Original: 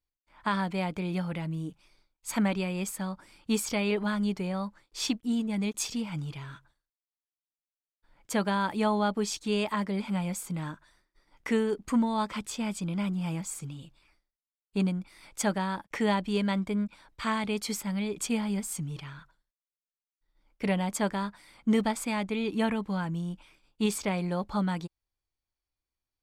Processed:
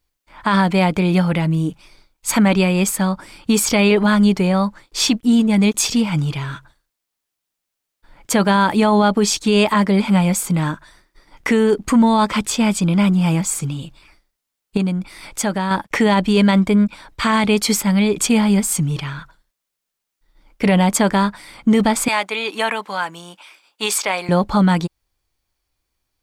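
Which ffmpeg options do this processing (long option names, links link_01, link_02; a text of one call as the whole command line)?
ffmpeg -i in.wav -filter_complex "[0:a]asettb=1/sr,asplit=3[link_01][link_02][link_03];[link_01]atrim=end=14.774[link_04];[link_02]atrim=start=14.77:end=15.71,asetpts=PTS-STARTPTS,afade=type=in:duration=0.004:curve=qsin,afade=type=out:start_time=0.936:duration=0.004:curve=qsin,acompressor=threshold=-38dB:ratio=2:attack=3.2:release=140:knee=1:detection=peak[link_05];[link_03]atrim=start=15.706[link_06];[link_04][link_05]acrossfade=duration=0.004:curve1=hsin:curve2=qsin[link_07];[link_07][link_06]acrossfade=duration=0.004:curve1=qsin:curve2=hsin,asettb=1/sr,asplit=3[link_08][link_09][link_10];[link_08]atrim=end=22.084[link_11];[link_09]atrim=start=22.08:end=24.29,asetpts=PTS-STARTPTS,afade=type=in:duration=0.004:curve=qsin,afade=type=out:start_time=2.206:duration=0.004:curve=qsin,highpass=710[link_12];[link_10]atrim=start=24.286[link_13];[link_11][link_12]acrossfade=duration=0.004:curve1=hsin:curve2=qsin[link_14];[link_14][link_13]acrossfade=duration=0.004:curve1=qsin:curve2=hsin,acontrast=84,alimiter=limit=-15.5dB:level=0:latency=1:release=23,volume=8.5dB" out.wav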